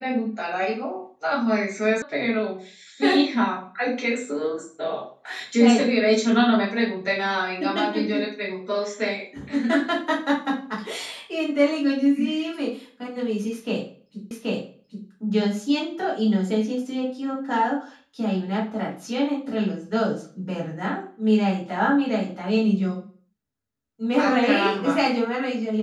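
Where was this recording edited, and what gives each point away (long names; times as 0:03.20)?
0:02.02: cut off before it has died away
0:14.31: the same again, the last 0.78 s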